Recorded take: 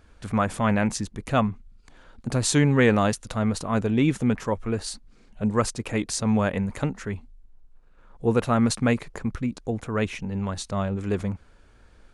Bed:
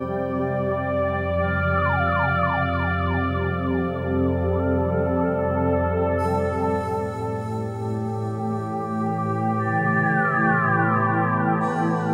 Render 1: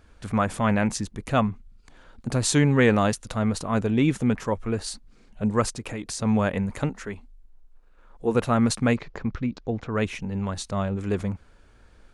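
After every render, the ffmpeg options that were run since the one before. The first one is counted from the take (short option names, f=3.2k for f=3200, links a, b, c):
-filter_complex "[0:a]asettb=1/sr,asplit=3[a][b][c];[a]atrim=end=5.694[d];[b]atrim=start=5.69:end=6.2,asetpts=PTS-STARTPTS,afade=t=in:d=0.004:c=qsin,afade=t=out:st=0.506:d=0.004:c=qsin,acompressor=threshold=-29dB:ratio=4:attack=3.2:release=140:knee=1:detection=peak[e];[c]atrim=start=6.196[f];[d][e]acrossfade=d=0.004:c1=hsin:c2=qsin[g];[g][f]acrossfade=d=0.004:c1=qsin:c2=hsin,asettb=1/sr,asplit=3[h][i][j];[h]atrim=end=6.894[k];[i]atrim=start=6.89:end=8.35,asetpts=PTS-STARTPTS,afade=t=in:d=0.004:c=qsin,afade=t=out:st=1.456:d=0.004:c=qsin,equalizer=f=120:w=1.3:g=-12[l];[j]atrim=start=8.346[m];[k][l]acrossfade=d=0.004:c1=hsin:c2=qsin[n];[n][m]acrossfade=d=0.004:c1=qsin:c2=hsin,asettb=1/sr,asplit=3[o][p][q];[o]atrim=end=8.964[r];[p]atrim=start=8.96:end=9.95,asetpts=PTS-STARTPTS,afade=t=in:d=0.004:c=qsin,afade=t=out:st=0.986:d=0.004:c=qsin,lowpass=f=5.4k:w=0.5412,lowpass=f=5.4k:w=1.3066[s];[q]atrim=start=9.946[t];[r][s]acrossfade=d=0.004:c1=hsin:c2=qsin[u];[u][t]acrossfade=d=0.004:c1=qsin:c2=hsin"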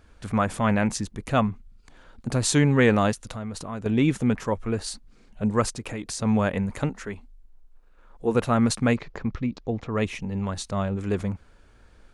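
-filter_complex "[0:a]asettb=1/sr,asplit=3[a][b][c];[a]atrim=end=3.124[d];[b]atrim=start=3.12:end=3.86,asetpts=PTS-STARTPTS,afade=t=in:d=0.004:c=qsin,afade=t=out:st=0.736:d=0.004:c=qsin,acompressor=threshold=-32dB:ratio=3:attack=3.2:release=140:knee=1:detection=peak[e];[c]atrim=start=3.856[f];[d][e]acrossfade=d=0.004:c1=hsin:c2=qsin[g];[g][f]acrossfade=d=0.004:c1=qsin:c2=hsin,asettb=1/sr,asplit=3[h][i][j];[h]atrim=end=9.294[k];[i]atrim=start=9.29:end=10.45,asetpts=PTS-STARTPTS,afade=t=in:d=0.004:c=qsin,afade=t=out:st=1.156:d=0.004:c=qsin,bandreject=f=1.5k:w=8[l];[j]atrim=start=10.446[m];[k][l]acrossfade=d=0.004:c1=hsin:c2=qsin[n];[n][m]acrossfade=d=0.004:c1=qsin:c2=hsin"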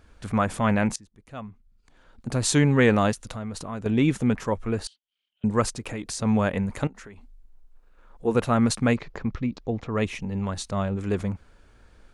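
-filter_complex "[0:a]asettb=1/sr,asplit=3[a][b][c];[a]atrim=end=4.874[d];[b]atrim=start=4.87:end=5.44,asetpts=PTS-STARTPTS,afade=t=in:d=0.004:c=qsin,afade=t=out:st=0.566:d=0.004:c=qsin,bandpass=f=3.1k:t=q:w=17[e];[c]atrim=start=5.436[f];[d][e]acrossfade=d=0.004:c1=hsin:c2=qsin[g];[g][f]acrossfade=d=0.004:c1=qsin:c2=hsin,asettb=1/sr,asplit=3[h][i][j];[h]atrim=end=6.874[k];[i]atrim=start=6.87:end=8.25,asetpts=PTS-STARTPTS,afade=t=in:d=0.004:c=qsin,afade=t=out:st=1.376:d=0.004:c=qsin,acompressor=threshold=-40dB:ratio=8:attack=3.2:release=140:knee=1:detection=peak[l];[j]atrim=start=8.246[m];[k][l]acrossfade=d=0.004:c1=hsin:c2=qsin[n];[n][m]acrossfade=d=0.004:c1=qsin:c2=hsin,asplit=2[o][p];[o]atrim=end=0.96,asetpts=PTS-STARTPTS,afade=t=out:st=0.956:d=0.004:c=hsin:silence=0.0891251[q];[p]atrim=start=0.96,asetpts=PTS-STARTPTS,afade=t=in:d=1.53:c=qua:silence=0.0891251[r];[q][r]concat=n=2:v=0:a=1"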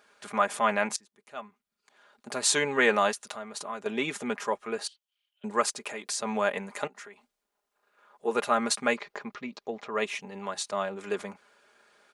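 -af "highpass=530,aecho=1:1:4.9:0.55"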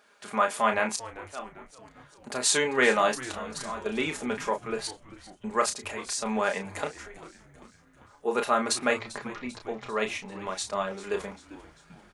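-filter_complex "[0:a]asplit=2[a][b];[b]adelay=32,volume=-6.5dB[c];[a][c]amix=inputs=2:normalize=0,asplit=6[d][e][f][g][h][i];[e]adelay=394,afreqshift=-120,volume=-17dB[j];[f]adelay=788,afreqshift=-240,volume=-22.4dB[k];[g]adelay=1182,afreqshift=-360,volume=-27.7dB[l];[h]adelay=1576,afreqshift=-480,volume=-33.1dB[m];[i]adelay=1970,afreqshift=-600,volume=-38.4dB[n];[d][j][k][l][m][n]amix=inputs=6:normalize=0"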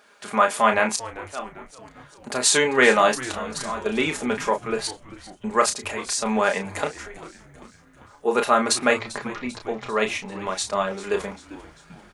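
-af "volume=6dB,alimiter=limit=-2dB:level=0:latency=1"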